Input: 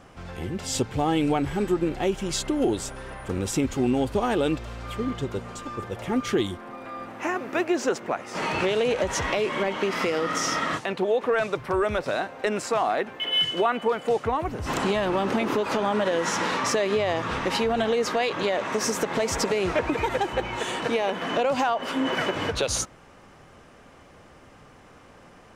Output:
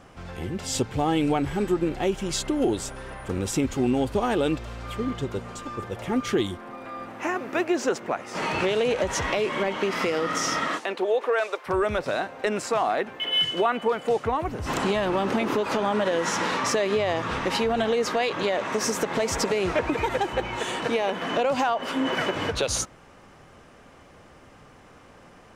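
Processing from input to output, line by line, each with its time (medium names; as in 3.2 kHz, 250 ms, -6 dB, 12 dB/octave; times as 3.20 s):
10.67–11.66 s: high-pass 210 Hz -> 480 Hz 24 dB/octave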